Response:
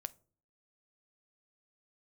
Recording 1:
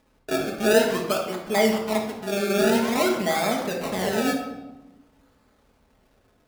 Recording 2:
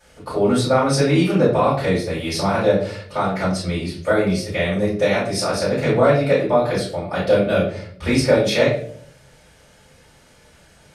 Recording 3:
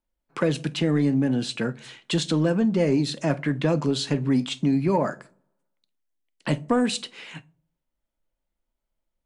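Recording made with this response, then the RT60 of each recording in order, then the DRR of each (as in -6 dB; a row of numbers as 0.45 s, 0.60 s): 3; 1.1 s, 0.55 s, 0.45 s; -0.5 dB, -10.5 dB, 14.0 dB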